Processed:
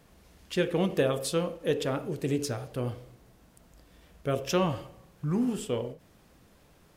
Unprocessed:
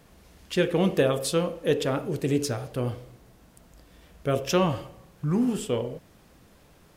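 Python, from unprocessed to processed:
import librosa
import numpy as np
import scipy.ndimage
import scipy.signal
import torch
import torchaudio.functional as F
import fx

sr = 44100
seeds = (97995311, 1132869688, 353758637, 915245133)

y = fx.end_taper(x, sr, db_per_s=210.0)
y = F.gain(torch.from_numpy(y), -3.5).numpy()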